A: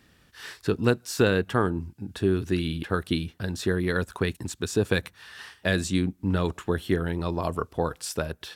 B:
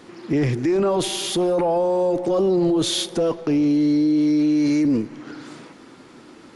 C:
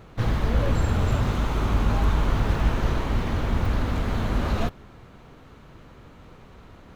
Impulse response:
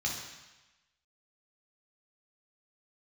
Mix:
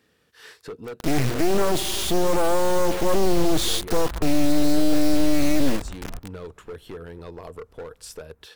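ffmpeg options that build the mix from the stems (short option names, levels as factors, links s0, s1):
-filter_complex "[0:a]highpass=f=160:p=1,equalizer=f=460:t=o:w=0.3:g=11.5,asoftclip=type=hard:threshold=0.119,volume=0.562,asplit=2[s0][s1];[1:a]acrusher=bits=4:mix=0:aa=0.000001,adelay=750,volume=1.19[s2];[2:a]lowpass=1900,dynaudnorm=f=230:g=9:m=3.98,adelay=1500,volume=0.106[s3];[s1]apad=whole_len=372872[s4];[s3][s4]sidechaincompress=threshold=0.0224:ratio=8:attack=16:release=277[s5];[s0][s5]amix=inputs=2:normalize=0,acompressor=threshold=0.0158:ratio=2.5,volume=1[s6];[s2][s6]amix=inputs=2:normalize=0,aeval=exprs='clip(val(0),-1,0.0266)':c=same,asubboost=boost=2.5:cutoff=110"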